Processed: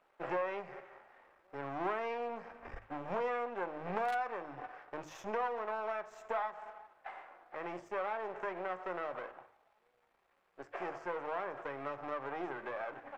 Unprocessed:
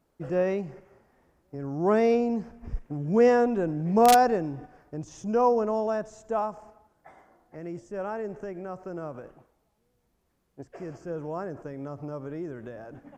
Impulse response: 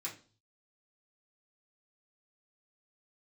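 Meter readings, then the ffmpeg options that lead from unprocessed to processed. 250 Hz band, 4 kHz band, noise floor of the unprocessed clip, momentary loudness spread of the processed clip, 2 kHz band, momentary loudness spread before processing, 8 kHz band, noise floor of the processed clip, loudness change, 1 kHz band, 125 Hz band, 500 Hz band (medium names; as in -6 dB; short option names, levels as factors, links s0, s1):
-18.5 dB, -14.0 dB, -73 dBFS, 14 LU, -3.5 dB, 20 LU, under -20 dB, -74 dBFS, -13.5 dB, -10.5 dB, -19.0 dB, -13.0 dB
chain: -filter_complex "[0:a]aeval=exprs='if(lt(val(0),0),0.251*val(0),val(0))':c=same,acrossover=split=550 3100:gain=0.0708 1 0.0891[s0][s1][s2];[s0][s1][s2]amix=inputs=3:normalize=0,bandreject=f=50:t=h:w=6,bandreject=f=100:t=h:w=6,bandreject=f=150:t=h:w=6,acompressor=threshold=0.00562:ratio=6,asplit=2[s3][s4];[1:a]atrim=start_sample=2205[s5];[s4][s5]afir=irnorm=-1:irlink=0,volume=0.447[s6];[s3][s6]amix=inputs=2:normalize=0,volume=3.16"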